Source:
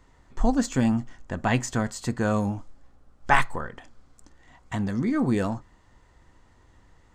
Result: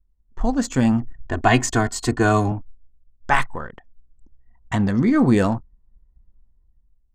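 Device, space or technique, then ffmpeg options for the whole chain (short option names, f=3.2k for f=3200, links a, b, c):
voice memo with heavy noise removal: -filter_complex "[0:a]asettb=1/sr,asplit=3[a][b][c];[a]atrim=end=1.024[d];[b]atrim=start=1.02:end=2.52,asetpts=PTS-STARTPTS,afade=t=in:d=0.004:c=qsin,afade=t=out:st=1.496:d=0.004:c=qsin,aecho=1:1:2.8:0.88,atrim=end_sample=66150[e];[c]atrim=start=2.516[f];[d][e]acrossfade=d=0.004:c1=hsin:c2=qsin[g];[g][f]acrossfade=d=0.004:c1=qsin:c2=hsin,anlmdn=0.398,dynaudnorm=f=120:g=11:m=9dB,volume=-1dB"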